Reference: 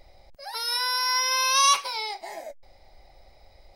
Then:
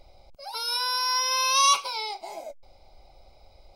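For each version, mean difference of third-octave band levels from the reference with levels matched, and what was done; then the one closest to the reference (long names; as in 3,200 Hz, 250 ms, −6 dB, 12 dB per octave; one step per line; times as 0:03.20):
1.0 dB: Butterworth band-reject 1,800 Hz, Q 2.7
high-shelf EQ 10,000 Hz −4.5 dB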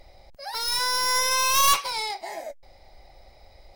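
5.0 dB: stylus tracing distortion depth 0.09 ms
in parallel at −4 dB: asymmetric clip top −32.5 dBFS
on the sum: level −1.5 dB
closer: first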